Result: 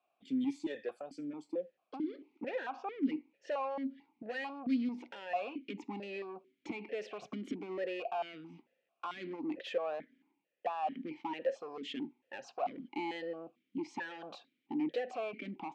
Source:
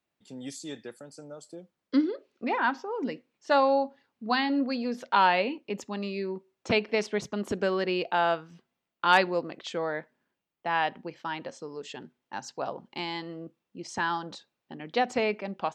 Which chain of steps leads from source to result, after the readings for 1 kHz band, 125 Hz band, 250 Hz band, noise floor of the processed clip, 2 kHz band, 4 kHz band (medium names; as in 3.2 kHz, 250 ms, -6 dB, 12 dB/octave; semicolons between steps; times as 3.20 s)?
-13.0 dB, -13.0 dB, -5.5 dB, -83 dBFS, -14.5 dB, -14.5 dB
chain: peak limiter -20 dBFS, peak gain reduction 11.5 dB; compression 6:1, threshold -34 dBFS, peak gain reduction 10.5 dB; saturation -37.5 dBFS, distortion -10 dB; stepped vowel filter 4.5 Hz; trim +14.5 dB